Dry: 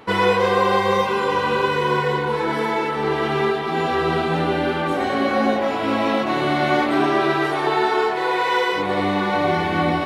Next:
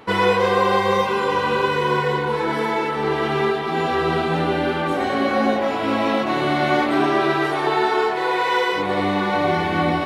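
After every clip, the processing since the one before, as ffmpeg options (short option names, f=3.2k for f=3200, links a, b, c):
-af anull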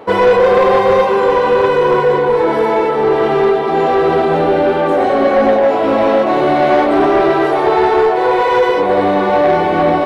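-af "equalizer=f=540:w=0.71:g=14,asoftclip=type=tanh:threshold=-5dB"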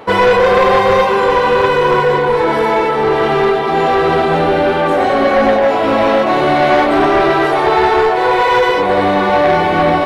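-af "equalizer=f=410:w=0.52:g=-7,volume=5.5dB"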